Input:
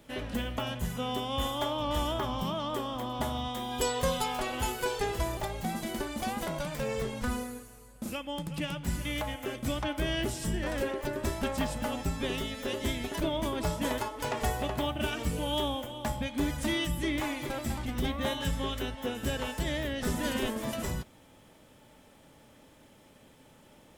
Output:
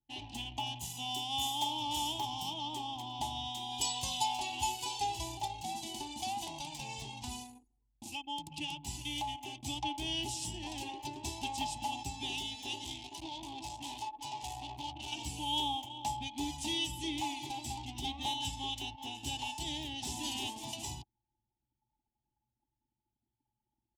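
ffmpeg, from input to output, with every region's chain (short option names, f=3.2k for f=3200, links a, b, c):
-filter_complex "[0:a]asettb=1/sr,asplit=3[a][b][c];[a]atrim=end=0.814[d];[b]atrim=start=0.81:end=2.54,asetpts=PTS-STARTPTS,afade=t=in:d=0.004:c=qsin,afade=t=out:st=1.726:d=0.004:c=qsin,highpass=84,highshelf=f=7.5k:g=10.5,aeval=exprs='sgn(val(0))*max(abs(val(0))-0.00266,0)':c=same[e];[c]atrim=start=2.536[f];[d][e]acrossfade=d=0.004:c1=hsin:c2=qsin[g];[g][f]acrossfade=d=0.004:c1=qsin:c2=hsin,asettb=1/sr,asplit=3[h][i][j];[h]atrim=end=12.844[k];[i]atrim=start=12.84:end=15.12,asetpts=PTS-STARTPTS,afade=t=in:d=0.004:c=qsin,afade=t=out:st=2.276:d=0.004:c=qsin,aeval=exprs='(tanh(50.1*val(0)+0.75)-tanh(0.75))/50.1':c=same,asplit=2[l][m];[m]adelay=15,volume=-8dB[n];[l][n]amix=inputs=2:normalize=0,atrim=end_sample=100548[o];[j]atrim=start=15.116[p];[k][o]acrossfade=d=0.004:c1=hsin:c2=qsin[q];[q][p]acrossfade=d=0.004:c1=qsin:c2=hsin,highpass=87,anlmdn=0.1,firequalizer=gain_entry='entry(130,0);entry(180,-15);entry(310,1);entry(500,-25);entry(830,11);entry(1300,-28);entry(2700,7);entry(6500,9);entry(14000,-5)':delay=0.05:min_phase=1,volume=-6dB"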